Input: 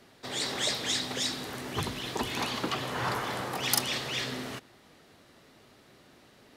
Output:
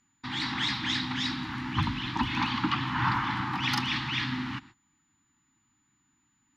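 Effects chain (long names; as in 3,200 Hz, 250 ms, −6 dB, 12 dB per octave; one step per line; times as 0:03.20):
elliptic band-stop filter 310–870 Hz, stop band 40 dB
noise gate −54 dBFS, range −20 dB
steady tone 7,000 Hz −57 dBFS
high-frequency loss of the air 270 metres
level +7.5 dB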